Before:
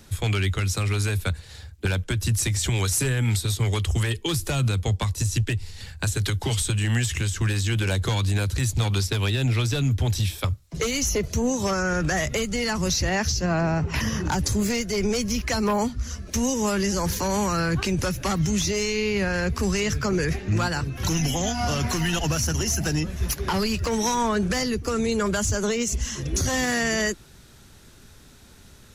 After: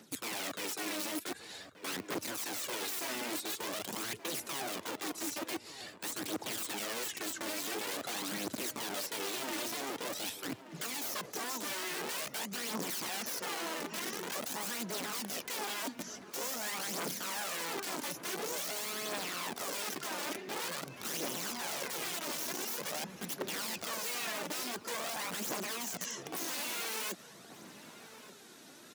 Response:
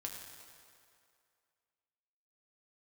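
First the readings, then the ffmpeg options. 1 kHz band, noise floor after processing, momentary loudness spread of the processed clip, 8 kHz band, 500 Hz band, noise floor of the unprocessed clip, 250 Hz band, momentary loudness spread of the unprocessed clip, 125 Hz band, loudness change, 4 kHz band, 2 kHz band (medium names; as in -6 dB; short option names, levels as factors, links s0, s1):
-10.5 dB, -54 dBFS, 5 LU, -10.0 dB, -14.5 dB, -49 dBFS, -17.0 dB, 4 LU, -32.0 dB, -12.5 dB, -9.0 dB, -11.0 dB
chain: -filter_complex "[0:a]aeval=exprs='(mod(11.2*val(0)+1,2)-1)/11.2':c=same,areverse,acompressor=threshold=0.0178:ratio=6,areverse,highpass=f=190:w=0.5412,highpass=f=190:w=1.3066,aphaser=in_gain=1:out_gain=1:delay=3.5:decay=0.48:speed=0.47:type=triangular,asplit=2[s0][s1];[s1]adelay=1179,lowpass=f=1800:p=1,volume=0.224,asplit=2[s2][s3];[s3]adelay=1179,lowpass=f=1800:p=1,volume=0.49,asplit=2[s4][s5];[s5]adelay=1179,lowpass=f=1800:p=1,volume=0.49,asplit=2[s6][s7];[s7]adelay=1179,lowpass=f=1800:p=1,volume=0.49,asplit=2[s8][s9];[s9]adelay=1179,lowpass=f=1800:p=1,volume=0.49[s10];[s0][s2][s4][s6][s8][s10]amix=inputs=6:normalize=0,volume=0.708"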